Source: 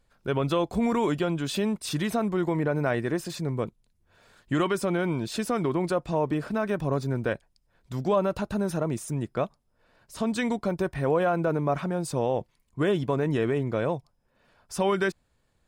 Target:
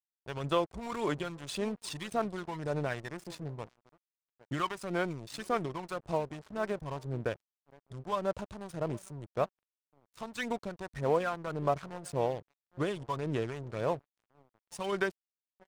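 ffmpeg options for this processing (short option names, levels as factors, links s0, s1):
-filter_complex "[0:a]highpass=f=79:p=1,equalizer=f=230:w=0.69:g=-10.5,asplit=2[s0][s1];[s1]aecho=0:1:809:0.119[s2];[s0][s2]amix=inputs=2:normalize=0,aphaser=in_gain=1:out_gain=1:delay=1.1:decay=0.54:speed=1.8:type=sinusoidal,acrossover=split=810[s3][s4];[s4]aeval=exprs='sgn(val(0))*max(abs(val(0))-0.00708,0)':c=same[s5];[s3][s5]amix=inputs=2:normalize=0,aresample=22050,aresample=44100,aeval=exprs='sgn(val(0))*max(abs(val(0))-0.00631,0)':c=same,volume=0.631"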